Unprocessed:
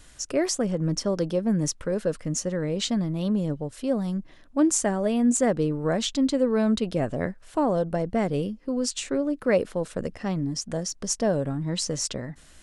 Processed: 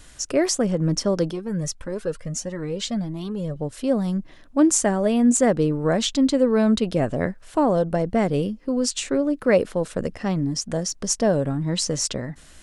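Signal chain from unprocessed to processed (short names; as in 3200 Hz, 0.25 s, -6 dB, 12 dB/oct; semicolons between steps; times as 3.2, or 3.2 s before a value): 1.31–3.56 cascading flanger rising 1.6 Hz; gain +4 dB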